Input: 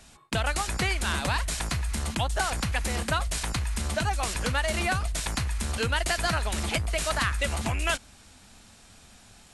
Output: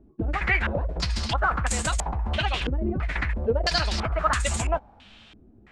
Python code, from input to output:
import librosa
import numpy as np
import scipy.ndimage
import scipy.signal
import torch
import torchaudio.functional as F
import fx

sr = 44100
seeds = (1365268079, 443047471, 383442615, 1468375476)

y = fx.chorus_voices(x, sr, voices=4, hz=0.73, base_ms=16, depth_ms=3.5, mix_pct=25)
y = fx.stretch_vocoder(y, sr, factor=0.6)
y = fx.filter_held_lowpass(y, sr, hz=3.0, low_hz=340.0, high_hz=7600.0)
y = F.gain(torch.from_numpy(y), 3.5).numpy()